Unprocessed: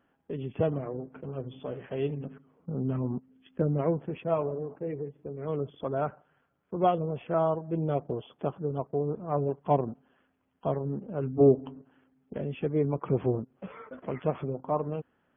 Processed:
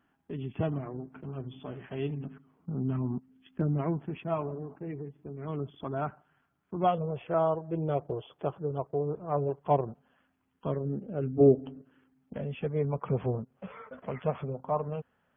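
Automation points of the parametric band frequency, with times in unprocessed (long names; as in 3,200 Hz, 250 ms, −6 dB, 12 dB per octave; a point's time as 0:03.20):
parametric band −13 dB 0.42 octaves
0:06.77 510 Hz
0:07.20 230 Hz
0:09.80 230 Hz
0:10.92 1,000 Hz
0:11.76 1,000 Hz
0:12.47 320 Hz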